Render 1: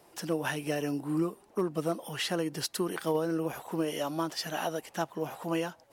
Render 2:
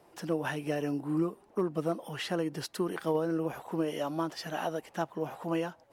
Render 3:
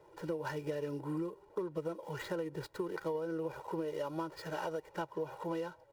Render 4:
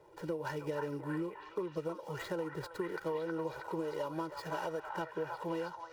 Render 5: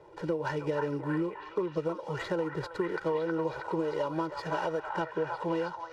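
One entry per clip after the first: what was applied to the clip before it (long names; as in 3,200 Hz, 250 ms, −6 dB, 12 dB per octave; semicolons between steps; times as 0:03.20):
high-shelf EQ 3,100 Hz −9 dB
running median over 15 samples; comb filter 2.1 ms, depth 90%; downward compressor 6 to 1, threshold −32 dBFS, peak gain reduction 11 dB; level −2 dB
echo through a band-pass that steps 319 ms, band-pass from 1,100 Hz, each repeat 0.7 octaves, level −1 dB
high-frequency loss of the air 73 metres; level +6.5 dB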